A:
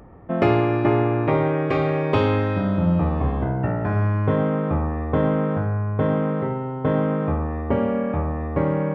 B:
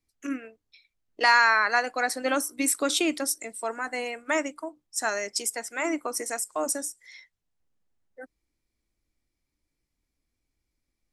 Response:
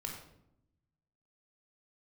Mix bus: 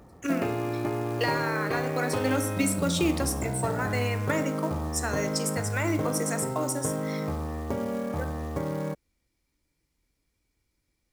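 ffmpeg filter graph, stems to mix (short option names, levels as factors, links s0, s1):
-filter_complex "[0:a]acompressor=threshold=0.0891:ratio=4,volume=0.531[s0];[1:a]acrossover=split=310[s1][s2];[s2]acompressor=threshold=0.0224:ratio=10[s3];[s1][s3]amix=inputs=2:normalize=0,volume=1.26,asplit=2[s4][s5];[s5]volume=0.708[s6];[2:a]atrim=start_sample=2205[s7];[s6][s7]afir=irnorm=-1:irlink=0[s8];[s0][s4][s8]amix=inputs=3:normalize=0,highpass=f=41:p=1,acrusher=bits=5:mode=log:mix=0:aa=0.000001"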